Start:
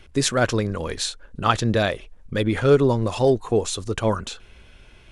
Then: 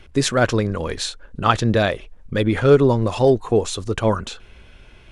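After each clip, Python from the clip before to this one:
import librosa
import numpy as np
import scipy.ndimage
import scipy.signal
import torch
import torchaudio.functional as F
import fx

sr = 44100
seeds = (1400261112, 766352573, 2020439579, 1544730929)

y = fx.high_shelf(x, sr, hz=4800.0, db=-5.5)
y = y * librosa.db_to_amplitude(3.0)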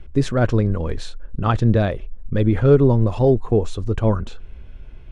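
y = fx.tilt_eq(x, sr, slope=-3.0)
y = y * librosa.db_to_amplitude(-5.0)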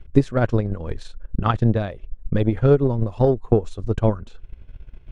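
y = fx.transient(x, sr, attack_db=11, sustain_db=-6)
y = y * librosa.db_to_amplitude(-6.0)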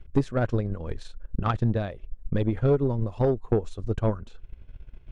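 y = 10.0 ** (-9.5 / 20.0) * np.tanh(x / 10.0 ** (-9.5 / 20.0))
y = y * librosa.db_to_amplitude(-4.0)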